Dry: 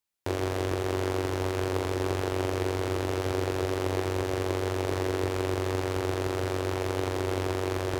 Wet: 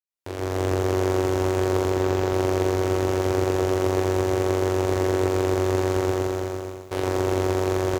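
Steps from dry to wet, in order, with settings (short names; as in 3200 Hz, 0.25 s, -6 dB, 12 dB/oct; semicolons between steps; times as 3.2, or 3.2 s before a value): opening faded in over 0.65 s; 1.91–2.33 bell 10000 Hz -13.5 dB 0.44 oct; echo 0.541 s -12 dB; 6.01–6.91 fade out; lo-fi delay 0.118 s, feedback 35%, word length 9-bit, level -6 dB; gain +3 dB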